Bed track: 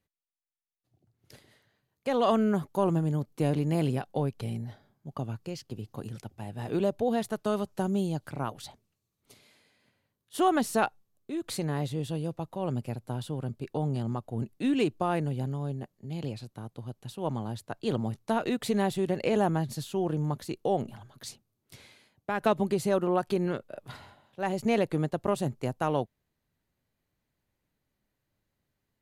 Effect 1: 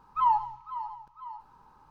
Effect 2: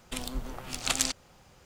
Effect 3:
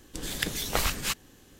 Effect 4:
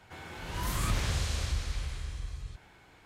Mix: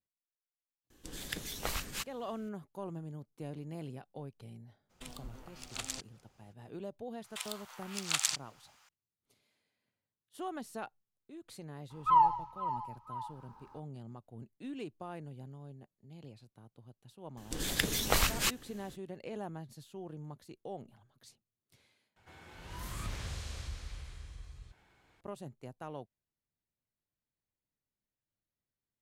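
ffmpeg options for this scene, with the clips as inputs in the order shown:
ffmpeg -i bed.wav -i cue0.wav -i cue1.wav -i cue2.wav -i cue3.wav -filter_complex "[3:a]asplit=2[link_01][link_02];[2:a]asplit=2[link_03][link_04];[0:a]volume=-16dB[link_05];[link_04]highpass=frequency=900:width=0.5412,highpass=frequency=900:width=1.3066[link_06];[link_05]asplit=2[link_07][link_08];[link_07]atrim=end=22.164[link_09];[4:a]atrim=end=3.05,asetpts=PTS-STARTPTS,volume=-10dB[link_10];[link_08]atrim=start=25.206[link_11];[link_01]atrim=end=1.59,asetpts=PTS-STARTPTS,volume=-9.5dB,afade=type=in:duration=0.004:curve=hsin,afade=type=out:start_time=1.586:duration=0.004:curve=hsin,adelay=900[link_12];[link_03]atrim=end=1.65,asetpts=PTS-STARTPTS,volume=-12.5dB,afade=type=in:duration=0.02,afade=type=out:start_time=1.63:duration=0.02,adelay=215649S[link_13];[link_06]atrim=end=1.65,asetpts=PTS-STARTPTS,volume=-3dB,afade=type=in:duration=0.004:curve=hsin,afade=type=out:start_time=1.646:duration=0.004:curve=hsin,adelay=7240[link_14];[1:a]atrim=end=1.9,asetpts=PTS-STARTPTS,volume=-0.5dB,afade=type=in:duration=0.004:curve=hsin,afade=type=out:start_time=1.896:duration=0.004:curve=hsin,adelay=11900[link_15];[link_02]atrim=end=1.59,asetpts=PTS-STARTPTS,volume=-1dB,afade=type=in:duration=0.004:curve=hsin,afade=type=out:start_time=1.586:duration=0.004:curve=hsin,adelay=17370[link_16];[link_09][link_10]acrossfade=duration=0.004:curve1=hsin:curve2=hsin[link_17];[link_17][link_11]acrossfade=duration=0.004:curve1=hsin:curve2=hsin[link_18];[link_18][link_12][link_13][link_14][link_15][link_16]amix=inputs=6:normalize=0" out.wav

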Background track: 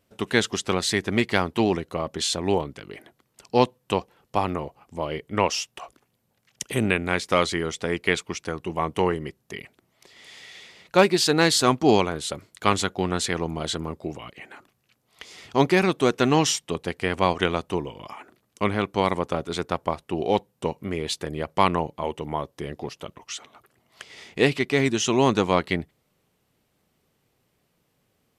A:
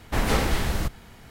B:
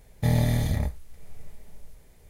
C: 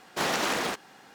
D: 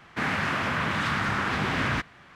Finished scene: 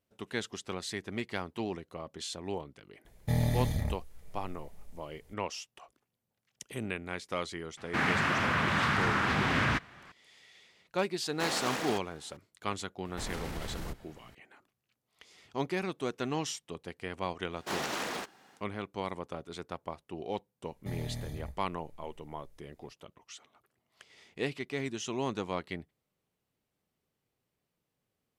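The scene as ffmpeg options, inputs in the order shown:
ffmpeg -i bed.wav -i cue0.wav -i cue1.wav -i cue2.wav -i cue3.wav -filter_complex "[2:a]asplit=2[link_01][link_02];[3:a]asplit=2[link_03][link_04];[0:a]volume=-14dB[link_05];[1:a]alimiter=limit=-21dB:level=0:latency=1:release=19[link_06];[link_01]atrim=end=2.29,asetpts=PTS-STARTPTS,volume=-6dB,afade=type=in:duration=0.004:curve=hsin,afade=type=out:start_time=2.286:duration=0.004:curve=hsin,adelay=134505S[link_07];[4:a]atrim=end=2.35,asetpts=PTS-STARTPTS,volume=-1.5dB,afade=type=in:duration=0.004:curve=hsin,afade=type=out:start_time=2.346:duration=0.004:curve=hsin,adelay=7770[link_08];[link_03]atrim=end=1.14,asetpts=PTS-STARTPTS,volume=-7dB,afade=type=in:duration=0.004:curve=hsin,afade=type=out:start_time=1.136:duration=0.004:curve=hsin,adelay=11230[link_09];[link_06]atrim=end=1.3,asetpts=PTS-STARTPTS,volume=-10.5dB,afade=type=in:duration=0.004:curve=hsin,afade=type=out:start_time=1.296:duration=0.004:curve=hsin,adelay=13050[link_10];[link_04]atrim=end=1.14,asetpts=PTS-STARTPTS,volume=-7.5dB,afade=type=in:duration=0.1,afade=type=out:start_time=1.04:duration=0.1,adelay=17500[link_11];[link_02]atrim=end=2.29,asetpts=PTS-STARTPTS,volume=-15.5dB,afade=type=in:duration=0.004:curve=hsin,afade=type=out:start_time=2.286:duration=0.004:curve=hsin,adelay=20630[link_12];[link_05][link_07][link_08][link_09][link_10][link_11][link_12]amix=inputs=7:normalize=0" out.wav

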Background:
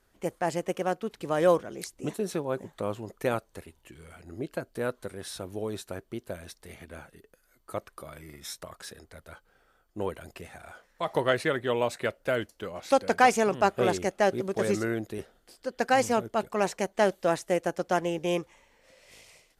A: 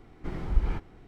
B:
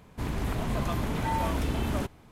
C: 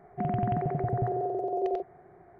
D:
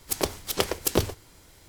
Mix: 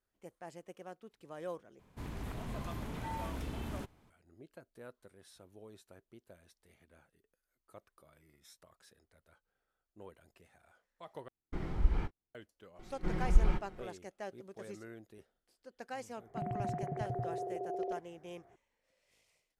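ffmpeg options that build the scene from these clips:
ffmpeg -i bed.wav -i cue0.wav -i cue1.wav -i cue2.wav -filter_complex "[1:a]asplit=2[link_01][link_02];[0:a]volume=-20dB[link_03];[link_01]agate=range=-41dB:threshold=-40dB:ratio=16:release=100:detection=peak[link_04];[link_02]aecho=1:1:5.5:0.71[link_05];[link_03]asplit=3[link_06][link_07][link_08];[link_06]atrim=end=1.794[link_09];[2:a]atrim=end=2.31,asetpts=PTS-STARTPTS,volume=-11.5dB[link_10];[link_07]atrim=start=4.096:end=11.284[link_11];[link_04]atrim=end=1.07,asetpts=PTS-STARTPTS,volume=-4dB[link_12];[link_08]atrim=start=12.346[link_13];[link_05]atrim=end=1.07,asetpts=PTS-STARTPTS,volume=-2.5dB,afade=type=in:duration=0.004:curve=hsin,afade=type=out:start_time=1.066:duration=0.004:curve=hsin,adelay=12790[link_14];[3:a]atrim=end=2.39,asetpts=PTS-STARTPTS,volume=-9dB,afade=type=in:duration=0.004:curve=hsin,afade=type=out:start_time=2.386:duration=0.004:curve=hsin,adelay=16170[link_15];[link_09][link_10]acrossfade=duration=0.004:curve1=hsin:curve2=hsin[link_16];[link_16][link_11]acrossfade=duration=0.004:curve1=hsin:curve2=hsin[link_17];[link_17][link_12]acrossfade=duration=0.004:curve1=hsin:curve2=hsin[link_18];[link_18][link_13]acrossfade=duration=0.004:curve1=hsin:curve2=hsin[link_19];[link_19][link_14][link_15]amix=inputs=3:normalize=0" out.wav

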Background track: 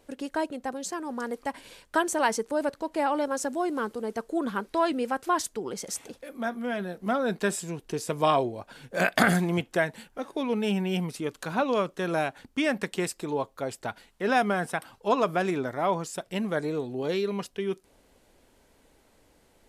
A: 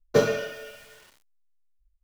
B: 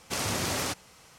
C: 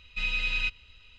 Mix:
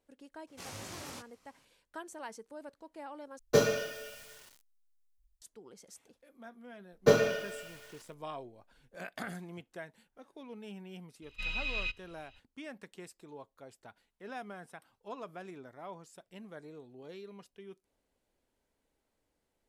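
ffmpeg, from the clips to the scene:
ffmpeg -i bed.wav -i cue0.wav -i cue1.wav -i cue2.wav -filter_complex "[1:a]asplit=2[link_01][link_02];[0:a]volume=-19.5dB[link_03];[2:a]flanger=delay=17.5:depth=5:speed=2.5[link_04];[link_01]bass=frequency=250:gain=1,treble=frequency=4000:gain=7[link_05];[link_03]asplit=2[link_06][link_07];[link_06]atrim=end=3.394[link_08];[link_05]atrim=end=2.03,asetpts=PTS-STARTPTS,volume=-4.5dB[link_09];[link_07]atrim=start=5.416[link_10];[link_04]atrim=end=1.18,asetpts=PTS-STARTPTS,volume=-12dB,afade=type=in:duration=0.004:curve=hsin,afade=type=out:start_time=1.176:duration=0.004:curve=hsin,adelay=470[link_11];[link_02]atrim=end=2.03,asetpts=PTS-STARTPTS,volume=-2.5dB,afade=type=in:duration=0.004:curve=hsin,afade=type=out:start_time=2.026:duration=0.004:curve=hsin,adelay=6920[link_12];[3:a]atrim=end=1.18,asetpts=PTS-STARTPTS,volume=-7dB,afade=type=in:duration=0.004:curve=hsin,afade=type=out:start_time=1.176:duration=0.004:curve=hsin,adelay=494802S[link_13];[link_08][link_09]acrossfade=duration=0.004:curve1=hsin:curve2=hsin[link_14];[link_14][link_10]acrossfade=duration=0.004:curve1=hsin:curve2=hsin[link_15];[link_15][link_11][link_12][link_13]amix=inputs=4:normalize=0" out.wav

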